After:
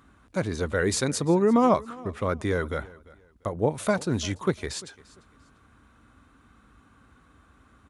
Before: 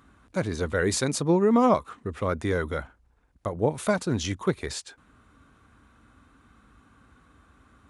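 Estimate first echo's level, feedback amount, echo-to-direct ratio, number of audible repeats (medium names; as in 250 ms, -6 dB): -21.5 dB, 26%, -21.0 dB, 2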